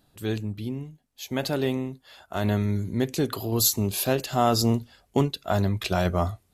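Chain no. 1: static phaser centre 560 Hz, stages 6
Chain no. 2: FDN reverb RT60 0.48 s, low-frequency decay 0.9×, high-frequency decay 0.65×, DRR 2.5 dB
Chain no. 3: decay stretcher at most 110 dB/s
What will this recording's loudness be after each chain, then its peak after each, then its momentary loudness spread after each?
-29.5 LUFS, -24.5 LUFS, -25.5 LUFS; -8.5 dBFS, -6.5 dBFS, -7.5 dBFS; 13 LU, 12 LU, 12 LU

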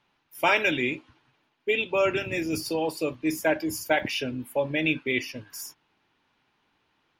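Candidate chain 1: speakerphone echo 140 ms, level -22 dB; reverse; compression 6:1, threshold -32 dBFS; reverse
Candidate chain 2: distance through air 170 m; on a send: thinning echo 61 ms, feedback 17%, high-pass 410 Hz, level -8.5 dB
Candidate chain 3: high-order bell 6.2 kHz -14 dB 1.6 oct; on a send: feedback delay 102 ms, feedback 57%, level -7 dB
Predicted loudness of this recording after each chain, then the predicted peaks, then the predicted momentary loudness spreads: -35.5 LUFS, -27.5 LUFS, -26.0 LUFS; -18.5 dBFS, -9.0 dBFS, -8.0 dBFS; 6 LU, 7 LU, 14 LU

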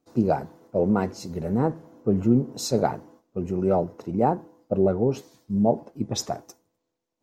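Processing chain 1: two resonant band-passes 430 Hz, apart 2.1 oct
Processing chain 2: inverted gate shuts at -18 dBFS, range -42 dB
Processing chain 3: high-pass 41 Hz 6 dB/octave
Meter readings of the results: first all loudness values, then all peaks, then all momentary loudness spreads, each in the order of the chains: -32.5 LUFS, -37.5 LUFS, -25.5 LUFS; -15.5 dBFS, -17.0 dBFS, -8.5 dBFS; 16 LU, 22 LU, 11 LU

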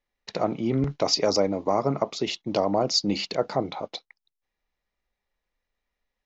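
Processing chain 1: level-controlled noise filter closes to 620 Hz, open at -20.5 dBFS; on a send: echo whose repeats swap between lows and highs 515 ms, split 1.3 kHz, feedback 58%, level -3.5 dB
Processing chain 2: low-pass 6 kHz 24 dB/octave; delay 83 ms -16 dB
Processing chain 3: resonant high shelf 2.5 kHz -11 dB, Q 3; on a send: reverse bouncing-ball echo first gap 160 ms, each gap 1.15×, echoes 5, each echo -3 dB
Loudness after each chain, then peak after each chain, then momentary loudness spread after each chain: -25.0 LUFS, -25.5 LUFS, -24.0 LUFS; -8.5 dBFS, -10.0 dBFS, -5.5 dBFS; 17 LU, 11 LU, 16 LU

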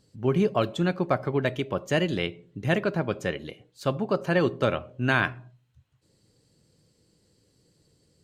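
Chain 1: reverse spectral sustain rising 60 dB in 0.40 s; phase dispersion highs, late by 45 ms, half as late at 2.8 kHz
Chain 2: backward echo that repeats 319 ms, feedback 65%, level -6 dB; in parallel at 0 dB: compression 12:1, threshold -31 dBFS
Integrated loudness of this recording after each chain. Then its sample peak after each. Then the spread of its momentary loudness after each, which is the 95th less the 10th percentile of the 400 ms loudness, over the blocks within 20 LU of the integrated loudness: -25.5 LUFS, -24.0 LUFS; -11.0 dBFS, -6.5 dBFS; 7 LU, 12 LU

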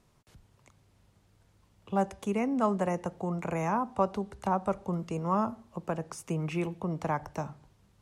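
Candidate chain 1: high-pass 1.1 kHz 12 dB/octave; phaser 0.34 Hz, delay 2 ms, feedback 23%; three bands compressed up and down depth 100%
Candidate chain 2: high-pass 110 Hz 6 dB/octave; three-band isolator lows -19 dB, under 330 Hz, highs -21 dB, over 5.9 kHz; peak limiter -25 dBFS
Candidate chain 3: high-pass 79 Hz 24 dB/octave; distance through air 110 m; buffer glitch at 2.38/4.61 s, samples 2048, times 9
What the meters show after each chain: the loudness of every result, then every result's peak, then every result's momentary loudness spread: -41.0 LUFS, -38.0 LUFS, -32.5 LUFS; -20.0 dBFS, -25.0 dBFS, -15.5 dBFS; 9 LU, 7 LU, 10 LU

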